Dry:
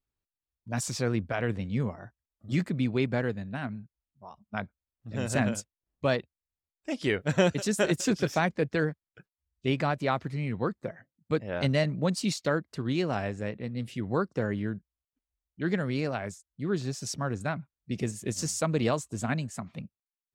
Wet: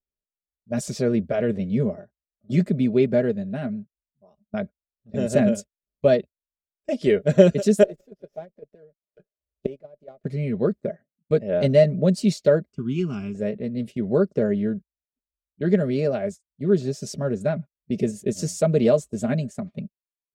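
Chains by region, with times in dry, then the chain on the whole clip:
7.83–10.24 s: peaking EQ 570 Hz +12 dB 1.5 oct + inverted gate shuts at -20 dBFS, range -25 dB + sliding maximum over 3 samples
12.72–13.35 s: high-order bell 670 Hz -10 dB 1.1 oct + static phaser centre 2.7 kHz, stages 8
whole clip: comb 4.9 ms, depth 61%; gate -39 dBFS, range -14 dB; resonant low shelf 730 Hz +7 dB, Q 3; trim -2 dB

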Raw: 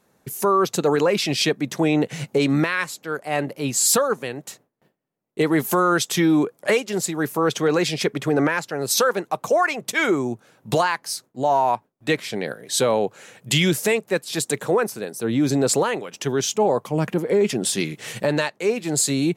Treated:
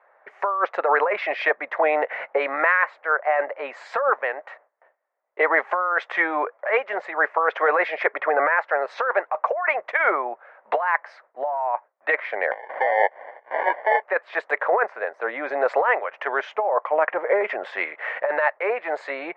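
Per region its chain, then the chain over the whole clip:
12.51–14.02 s: high-pass 410 Hz + de-esser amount 70% + sample-rate reducer 1.3 kHz
whole clip: elliptic band-pass 580–2000 Hz, stop band 80 dB; compressor with a negative ratio -27 dBFS, ratio -1; trim +7.5 dB

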